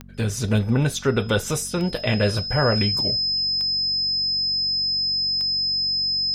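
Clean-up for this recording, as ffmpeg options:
-af "adeclick=t=4,bandreject=f=46.7:t=h:w=4,bandreject=f=93.4:t=h:w=4,bandreject=f=140.1:t=h:w=4,bandreject=f=186.8:t=h:w=4,bandreject=f=233.5:t=h:w=4,bandreject=f=5100:w=30"

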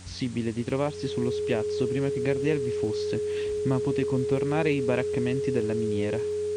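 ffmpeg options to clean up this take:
-af "adeclick=t=4,bandreject=f=90.9:t=h:w=4,bandreject=f=181.8:t=h:w=4,bandreject=f=272.7:t=h:w=4,bandreject=f=420:w=30,afwtdn=0.004"

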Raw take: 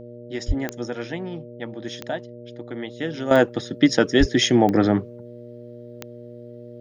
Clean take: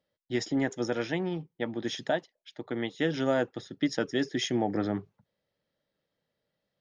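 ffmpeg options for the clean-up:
-filter_complex "[0:a]adeclick=t=4,bandreject=f=119.8:t=h:w=4,bandreject=f=239.6:t=h:w=4,bandreject=f=359.4:t=h:w=4,bandreject=f=479.2:t=h:w=4,bandreject=f=599:t=h:w=4,asplit=3[s0][s1][s2];[s0]afade=t=out:st=0.47:d=0.02[s3];[s1]highpass=f=140:w=0.5412,highpass=f=140:w=1.3066,afade=t=in:st=0.47:d=0.02,afade=t=out:st=0.59:d=0.02[s4];[s2]afade=t=in:st=0.59:d=0.02[s5];[s3][s4][s5]amix=inputs=3:normalize=0,asplit=3[s6][s7][s8];[s6]afade=t=out:st=4.19:d=0.02[s9];[s7]highpass=f=140:w=0.5412,highpass=f=140:w=1.3066,afade=t=in:st=4.19:d=0.02,afade=t=out:st=4.31:d=0.02[s10];[s8]afade=t=in:st=4.31:d=0.02[s11];[s9][s10][s11]amix=inputs=3:normalize=0,asetnsamples=n=441:p=0,asendcmd='3.31 volume volume -11.5dB',volume=1"

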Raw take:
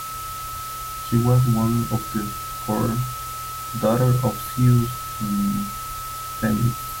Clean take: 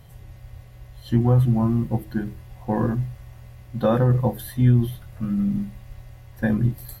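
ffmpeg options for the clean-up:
-af "bandreject=f=1300:w=30,afwtdn=0.016"

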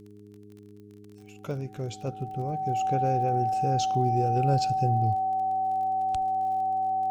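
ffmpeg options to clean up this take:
-af "adeclick=t=4,bandreject=f=103.3:t=h:w=4,bandreject=f=206.6:t=h:w=4,bandreject=f=309.9:t=h:w=4,bandreject=f=413.2:t=h:w=4,bandreject=f=760:w=30"

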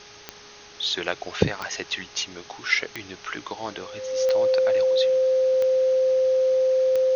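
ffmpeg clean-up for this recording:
-af "adeclick=t=4,bandreject=f=414.7:t=h:w=4,bandreject=f=829.4:t=h:w=4,bandreject=f=1244.1:t=h:w=4,bandreject=f=1658.8:t=h:w=4,bandreject=f=520:w=30,afwtdn=0.0079"

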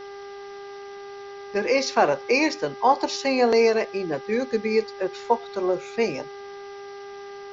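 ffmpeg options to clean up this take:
-af "bandreject=f=400.3:t=h:w=4,bandreject=f=800.6:t=h:w=4,bandreject=f=1200.9:t=h:w=4,bandreject=f=1601.2:t=h:w=4,bandreject=f=2001.5:t=h:w=4,afwtdn=0.0045"

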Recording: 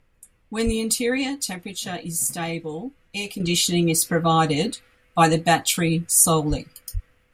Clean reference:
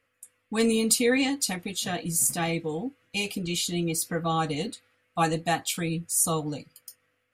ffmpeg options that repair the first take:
-filter_complex "[0:a]asplit=3[s0][s1][s2];[s0]afade=t=out:st=0.65:d=0.02[s3];[s1]highpass=f=140:w=0.5412,highpass=f=140:w=1.3066,afade=t=in:st=0.65:d=0.02,afade=t=out:st=0.77:d=0.02[s4];[s2]afade=t=in:st=0.77:d=0.02[s5];[s3][s4][s5]amix=inputs=3:normalize=0,asplit=3[s6][s7][s8];[s6]afade=t=out:st=6.49:d=0.02[s9];[s7]highpass=f=140:w=0.5412,highpass=f=140:w=1.3066,afade=t=in:st=6.49:d=0.02,afade=t=out:st=6.61:d=0.02[s10];[s8]afade=t=in:st=6.61:d=0.02[s11];[s9][s10][s11]amix=inputs=3:normalize=0,asplit=3[s12][s13][s14];[s12]afade=t=out:st=6.93:d=0.02[s15];[s13]highpass=f=140:w=0.5412,highpass=f=140:w=1.3066,afade=t=in:st=6.93:d=0.02,afade=t=out:st=7.05:d=0.02[s16];[s14]afade=t=in:st=7.05:d=0.02[s17];[s15][s16][s17]amix=inputs=3:normalize=0,agate=range=0.0891:threshold=0.00251,asetnsamples=n=441:p=0,asendcmd='3.4 volume volume -8dB',volume=1"

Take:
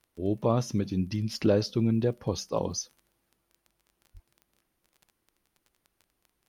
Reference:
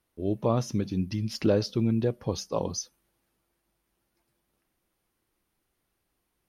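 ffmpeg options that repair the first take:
-filter_complex "[0:a]adeclick=t=4,asplit=3[s0][s1][s2];[s0]afade=t=out:st=4.13:d=0.02[s3];[s1]highpass=f=140:w=0.5412,highpass=f=140:w=1.3066,afade=t=in:st=4.13:d=0.02,afade=t=out:st=4.25:d=0.02[s4];[s2]afade=t=in:st=4.25:d=0.02[s5];[s3][s4][s5]amix=inputs=3:normalize=0"

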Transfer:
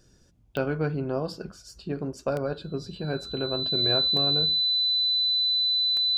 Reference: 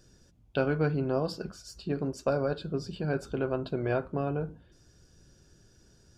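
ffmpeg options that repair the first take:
-af "adeclick=t=4,bandreject=f=4000:w=30"

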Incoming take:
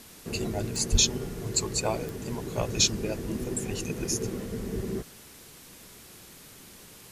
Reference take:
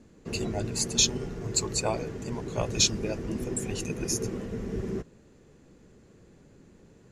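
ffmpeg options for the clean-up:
-filter_complex "[0:a]adeclick=t=4,asplit=3[s0][s1][s2];[s0]afade=t=out:st=0.91:d=0.02[s3];[s1]highpass=f=140:w=0.5412,highpass=f=140:w=1.3066,afade=t=in:st=0.91:d=0.02,afade=t=out:st=1.03:d=0.02[s4];[s2]afade=t=in:st=1.03:d=0.02[s5];[s3][s4][s5]amix=inputs=3:normalize=0,afwtdn=0.0035"

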